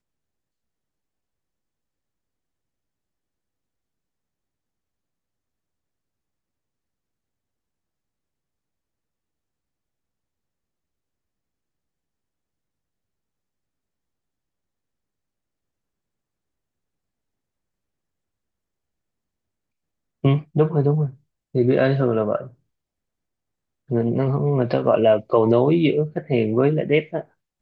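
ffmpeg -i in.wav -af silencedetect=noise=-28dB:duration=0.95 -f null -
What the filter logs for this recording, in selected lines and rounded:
silence_start: 0.00
silence_end: 20.24 | silence_duration: 20.24
silence_start: 22.45
silence_end: 23.91 | silence_duration: 1.46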